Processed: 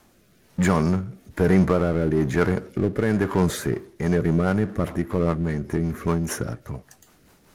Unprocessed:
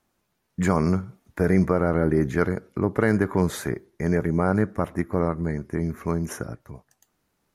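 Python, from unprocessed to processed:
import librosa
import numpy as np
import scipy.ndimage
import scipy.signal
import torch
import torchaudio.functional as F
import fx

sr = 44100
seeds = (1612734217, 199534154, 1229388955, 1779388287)

y = fx.power_curve(x, sr, exponent=0.7)
y = fx.rotary_switch(y, sr, hz=1.1, then_hz=5.0, switch_at_s=3.3)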